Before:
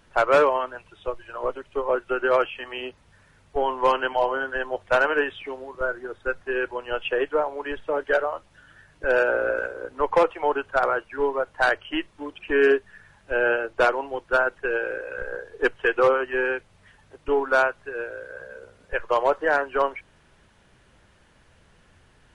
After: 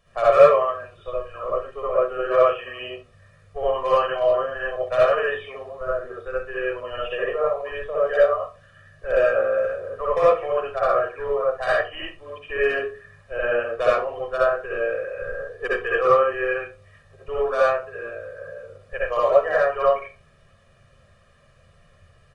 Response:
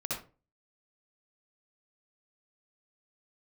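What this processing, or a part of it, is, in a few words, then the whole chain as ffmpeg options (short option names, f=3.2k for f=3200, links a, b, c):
microphone above a desk: -filter_complex "[0:a]aecho=1:1:1.7:0.9[a];[1:a]atrim=start_sample=2205[b];[a][b]afir=irnorm=-1:irlink=0,volume=-6dB"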